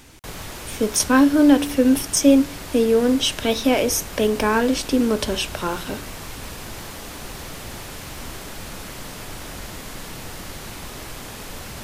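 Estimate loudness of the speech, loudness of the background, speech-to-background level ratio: −19.0 LKFS, −34.5 LKFS, 15.5 dB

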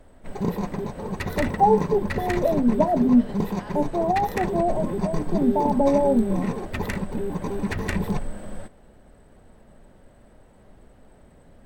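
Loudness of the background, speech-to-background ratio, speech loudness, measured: −29.0 LKFS, 6.0 dB, −23.0 LKFS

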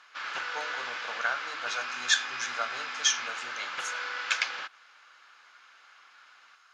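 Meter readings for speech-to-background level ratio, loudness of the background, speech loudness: 3.0 dB, −35.0 LKFS, −32.0 LKFS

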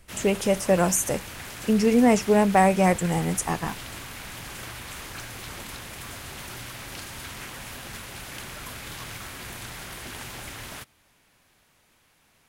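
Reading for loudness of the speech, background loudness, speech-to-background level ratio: −22.0 LKFS, −37.0 LKFS, 15.0 dB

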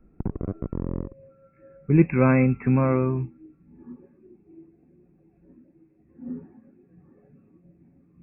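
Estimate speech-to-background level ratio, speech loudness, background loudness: 11.0 dB, −22.0 LKFS, −33.0 LKFS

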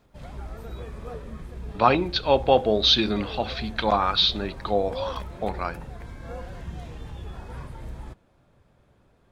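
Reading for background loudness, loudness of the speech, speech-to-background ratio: −38.5 LKFS, −23.0 LKFS, 15.5 dB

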